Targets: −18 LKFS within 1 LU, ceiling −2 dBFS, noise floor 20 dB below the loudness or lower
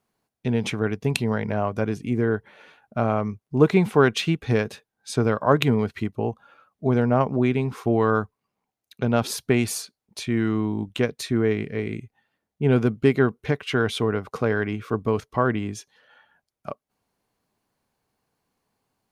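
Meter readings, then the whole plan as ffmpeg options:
integrated loudness −24.0 LKFS; sample peak −3.0 dBFS; target loudness −18.0 LKFS
→ -af "volume=6dB,alimiter=limit=-2dB:level=0:latency=1"

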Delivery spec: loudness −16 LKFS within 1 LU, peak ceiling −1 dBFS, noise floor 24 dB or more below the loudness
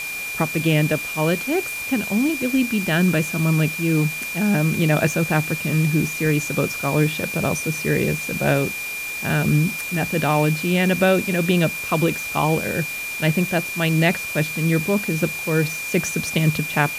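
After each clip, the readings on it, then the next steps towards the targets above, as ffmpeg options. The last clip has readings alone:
interfering tone 2,400 Hz; level of the tone −27 dBFS; background noise floor −29 dBFS; target noise floor −45 dBFS; integrated loudness −20.5 LKFS; sample peak −3.5 dBFS; target loudness −16.0 LKFS
→ -af "bandreject=frequency=2400:width=30"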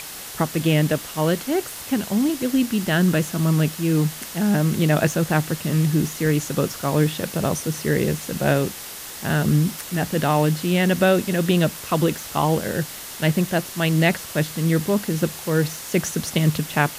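interfering tone none found; background noise floor −36 dBFS; target noise floor −46 dBFS
→ -af "afftdn=noise_reduction=10:noise_floor=-36"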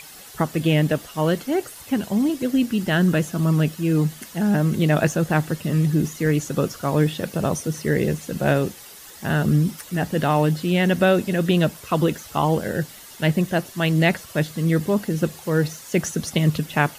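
background noise floor −43 dBFS; target noise floor −46 dBFS
→ -af "afftdn=noise_reduction=6:noise_floor=-43"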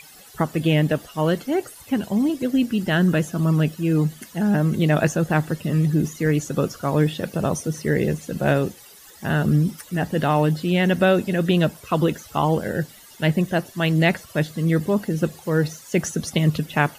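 background noise floor −46 dBFS; integrated loudness −22.0 LKFS; sample peak −4.5 dBFS; target loudness −16.0 LKFS
→ -af "volume=6dB,alimiter=limit=-1dB:level=0:latency=1"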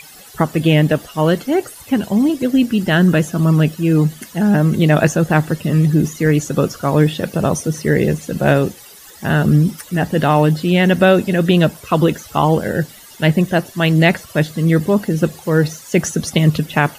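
integrated loudness −16.0 LKFS; sample peak −1.0 dBFS; background noise floor −40 dBFS

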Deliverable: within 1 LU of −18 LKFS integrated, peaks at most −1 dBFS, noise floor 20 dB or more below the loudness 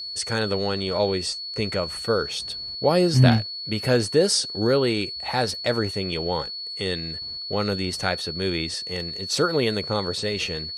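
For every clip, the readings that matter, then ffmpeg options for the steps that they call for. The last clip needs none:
interfering tone 4,400 Hz; level of the tone −31 dBFS; integrated loudness −24.0 LKFS; sample peak −4.0 dBFS; target loudness −18.0 LKFS
→ -af "bandreject=frequency=4400:width=30"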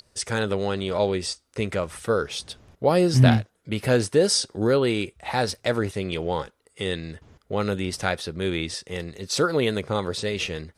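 interfering tone none found; integrated loudness −25.0 LKFS; sample peak −4.0 dBFS; target loudness −18.0 LKFS
→ -af "volume=7dB,alimiter=limit=-1dB:level=0:latency=1"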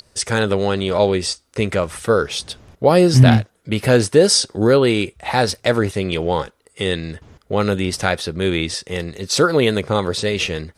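integrated loudness −18.0 LKFS; sample peak −1.0 dBFS; background noise floor −61 dBFS

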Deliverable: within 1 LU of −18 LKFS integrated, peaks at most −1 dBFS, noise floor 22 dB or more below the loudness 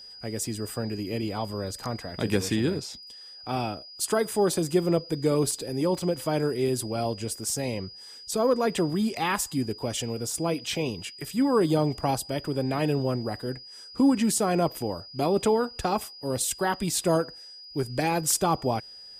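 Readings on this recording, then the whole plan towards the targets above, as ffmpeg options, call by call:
interfering tone 4,900 Hz; level of the tone −43 dBFS; integrated loudness −27.5 LKFS; sample peak −11.0 dBFS; target loudness −18.0 LKFS
→ -af "bandreject=frequency=4900:width=30"
-af "volume=9.5dB"

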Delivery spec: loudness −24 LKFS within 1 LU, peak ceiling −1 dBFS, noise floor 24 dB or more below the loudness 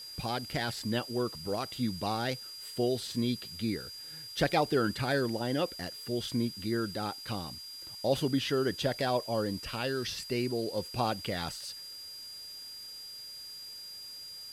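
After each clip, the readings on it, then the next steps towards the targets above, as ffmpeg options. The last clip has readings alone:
interfering tone 4,800 Hz; level of the tone −43 dBFS; background noise floor −46 dBFS; target noise floor −58 dBFS; integrated loudness −33.5 LKFS; sample peak −14.5 dBFS; target loudness −24.0 LKFS
→ -af "bandreject=frequency=4800:width=30"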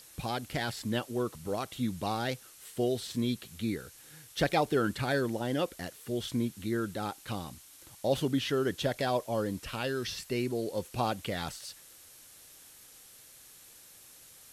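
interfering tone none found; background noise floor −55 dBFS; target noise floor −57 dBFS
→ -af "afftdn=noise_reduction=6:noise_floor=-55"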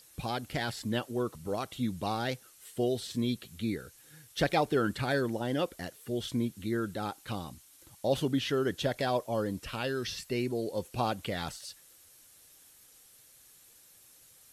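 background noise floor −59 dBFS; integrated loudness −33.0 LKFS; sample peak −14.5 dBFS; target loudness −24.0 LKFS
→ -af "volume=9dB"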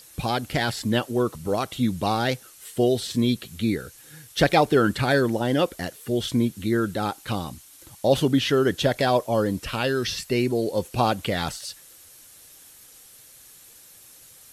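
integrated loudness −24.0 LKFS; sample peak −5.5 dBFS; background noise floor −50 dBFS

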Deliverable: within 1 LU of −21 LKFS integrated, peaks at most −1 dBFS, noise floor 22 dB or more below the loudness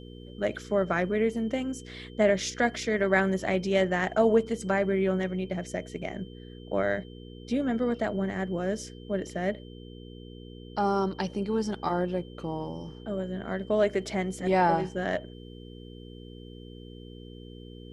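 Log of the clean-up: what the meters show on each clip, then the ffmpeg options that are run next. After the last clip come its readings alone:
mains hum 60 Hz; hum harmonics up to 480 Hz; level of the hum −42 dBFS; interfering tone 3,100 Hz; level of the tone −55 dBFS; integrated loudness −28.5 LKFS; sample peak −9.5 dBFS; target loudness −21.0 LKFS
→ -af "bandreject=frequency=60:width_type=h:width=4,bandreject=frequency=120:width_type=h:width=4,bandreject=frequency=180:width_type=h:width=4,bandreject=frequency=240:width_type=h:width=4,bandreject=frequency=300:width_type=h:width=4,bandreject=frequency=360:width_type=h:width=4,bandreject=frequency=420:width_type=h:width=4,bandreject=frequency=480:width_type=h:width=4"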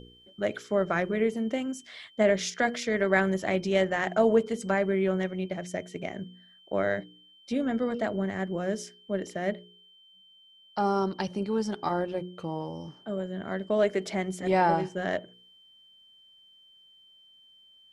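mains hum none found; interfering tone 3,100 Hz; level of the tone −55 dBFS
→ -af "bandreject=frequency=3100:width=30"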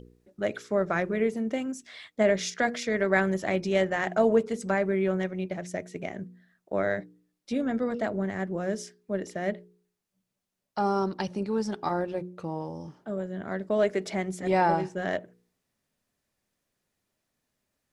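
interfering tone none found; integrated loudness −29.0 LKFS; sample peak −9.5 dBFS; target loudness −21.0 LKFS
→ -af "volume=8dB"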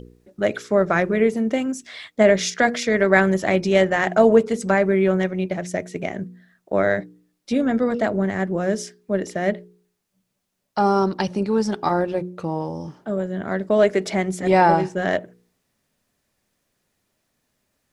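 integrated loudness −21.0 LKFS; sample peak −1.5 dBFS; background noise floor −74 dBFS

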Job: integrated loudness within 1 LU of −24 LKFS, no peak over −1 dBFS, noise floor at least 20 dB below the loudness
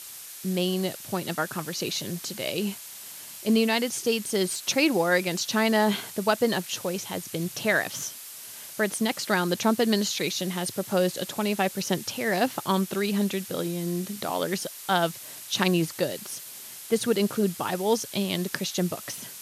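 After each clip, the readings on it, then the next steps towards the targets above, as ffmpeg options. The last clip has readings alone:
background noise floor −42 dBFS; target noise floor −47 dBFS; integrated loudness −27.0 LKFS; sample peak −8.0 dBFS; target loudness −24.0 LKFS
→ -af "afftdn=noise_reduction=6:noise_floor=-42"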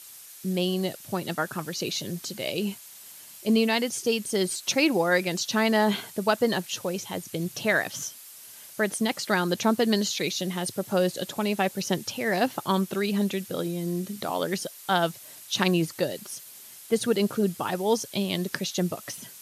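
background noise floor −47 dBFS; integrated loudness −27.0 LKFS; sample peak −8.0 dBFS; target loudness −24.0 LKFS
→ -af "volume=3dB"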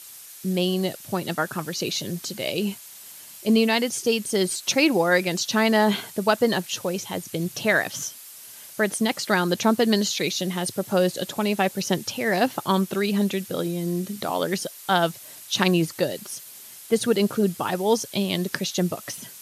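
integrated loudness −24.0 LKFS; sample peak −5.0 dBFS; background noise floor −44 dBFS

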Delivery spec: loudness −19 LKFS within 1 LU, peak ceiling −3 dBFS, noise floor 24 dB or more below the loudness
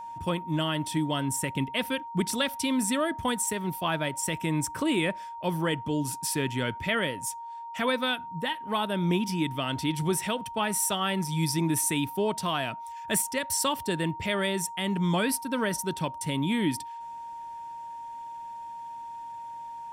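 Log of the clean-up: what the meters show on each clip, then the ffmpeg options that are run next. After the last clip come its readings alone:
interfering tone 930 Hz; level of the tone −37 dBFS; integrated loudness −28.5 LKFS; sample peak −14.5 dBFS; target loudness −19.0 LKFS
→ -af "bandreject=frequency=930:width=30"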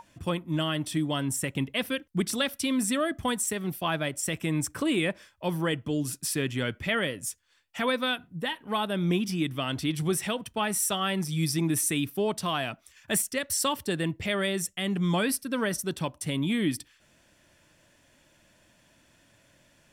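interfering tone none found; integrated loudness −29.0 LKFS; sample peak −14.5 dBFS; target loudness −19.0 LKFS
→ -af "volume=10dB"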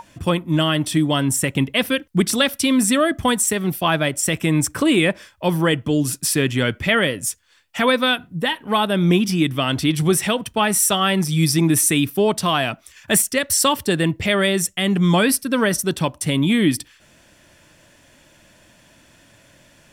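integrated loudness −19.0 LKFS; sample peak −4.5 dBFS; background noise floor −54 dBFS

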